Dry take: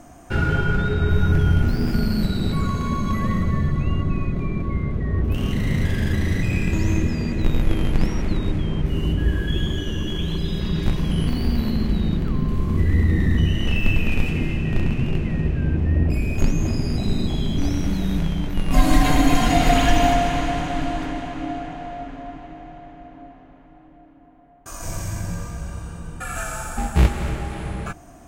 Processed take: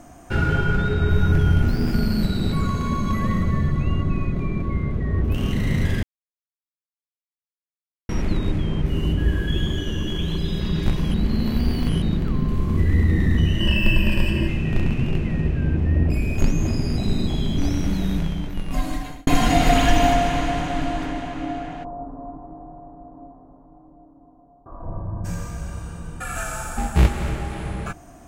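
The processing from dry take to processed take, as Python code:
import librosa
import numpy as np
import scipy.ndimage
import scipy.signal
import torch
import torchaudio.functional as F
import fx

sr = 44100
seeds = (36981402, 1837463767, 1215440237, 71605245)

y = fx.ripple_eq(x, sr, per_octave=1.3, db=14, at=(13.6, 14.48))
y = fx.ellip_lowpass(y, sr, hz=1100.0, order=4, stop_db=80, at=(21.83, 25.24), fade=0.02)
y = fx.edit(y, sr, fx.silence(start_s=6.03, length_s=2.06),
    fx.reverse_span(start_s=11.14, length_s=0.88),
    fx.fade_out_span(start_s=18.05, length_s=1.22), tone=tone)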